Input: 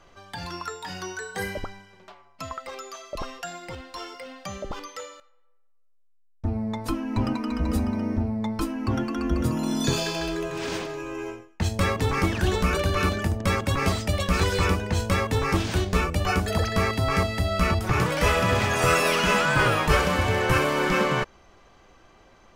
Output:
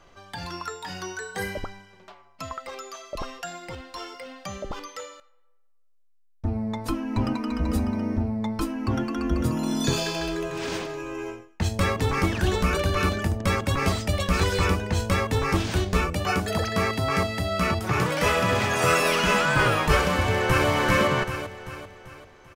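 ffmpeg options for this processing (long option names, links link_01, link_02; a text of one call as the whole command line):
ffmpeg -i in.wav -filter_complex "[0:a]asettb=1/sr,asplit=3[link_01][link_02][link_03];[link_01]atrim=end=16.134[link_04];[link_02]atrim=start=16.13:end=19,asetpts=PTS-STARTPTS,afade=type=in:duration=0.004:curve=qsin,afade=type=out:start_time=2.866:duration=0.004:curve=qsin,highpass=98[link_05];[link_03]atrim=start=18.996[link_06];[link_04][link_05]acrossfade=duration=0.004:curve1=hsin:curve2=qsin[link_07];[link_07][link_06]acrossfade=duration=0.004:curve1=qsin:curve2=hsin,asplit=2[link_08][link_09];[link_09]afade=type=in:start_time=20.2:duration=0.01,afade=type=out:start_time=20.68:duration=0.01,aecho=0:1:390|780|1170|1560|1950|2340:0.749894|0.337452|0.151854|0.0683341|0.0307503|0.0138377[link_10];[link_08][link_10]amix=inputs=2:normalize=0" out.wav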